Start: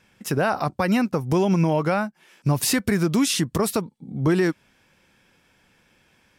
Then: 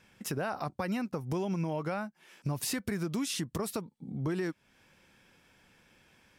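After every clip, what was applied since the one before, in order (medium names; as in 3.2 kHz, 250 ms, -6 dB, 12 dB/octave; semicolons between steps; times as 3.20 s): compression 2:1, threshold -36 dBFS, peak gain reduction 11 dB; trim -2.5 dB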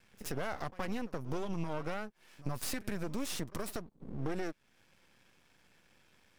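half-wave rectifier; reverse echo 72 ms -18.5 dB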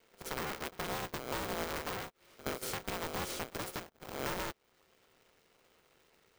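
cycle switcher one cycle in 3, inverted; polarity switched at an audio rate 450 Hz; trim -2.5 dB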